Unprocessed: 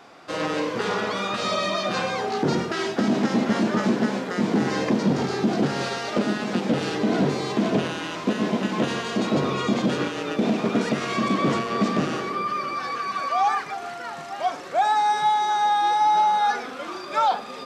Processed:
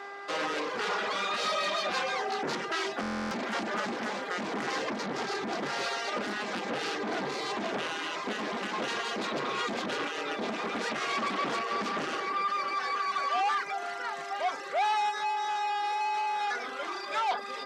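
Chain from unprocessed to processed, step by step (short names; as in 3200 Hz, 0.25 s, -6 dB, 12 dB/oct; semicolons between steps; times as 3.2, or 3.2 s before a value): soft clip -23 dBFS, distortion -10 dB; 15.09–17.29 compressor, threshold -27 dBFS, peak gain reduction 3 dB; reverb removal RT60 0.63 s; buzz 400 Hz, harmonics 5, -42 dBFS -3 dB/oct; weighting filter A; stuck buffer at 3.01, samples 1024, times 12; Doppler distortion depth 0.19 ms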